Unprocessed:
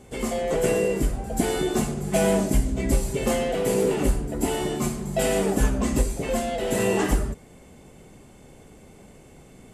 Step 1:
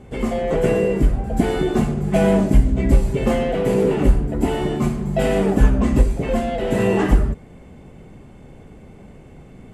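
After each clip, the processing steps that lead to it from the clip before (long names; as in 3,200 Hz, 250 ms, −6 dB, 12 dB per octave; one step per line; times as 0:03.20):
bass and treble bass +5 dB, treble −13 dB
level +3.5 dB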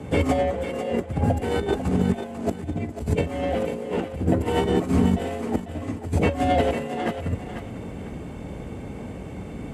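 compressor whose output falls as the input rises −24 dBFS, ratio −0.5
frequency shifter +36 Hz
feedback echo with a high-pass in the loop 496 ms, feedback 30%, high-pass 420 Hz, level −8 dB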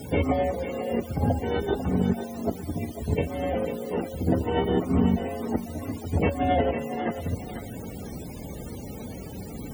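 bit-depth reduction 6 bits, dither triangular
spectral peaks only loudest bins 64
on a send at −23.5 dB: convolution reverb RT60 0.65 s, pre-delay 4 ms
on the sum: level −2.5 dB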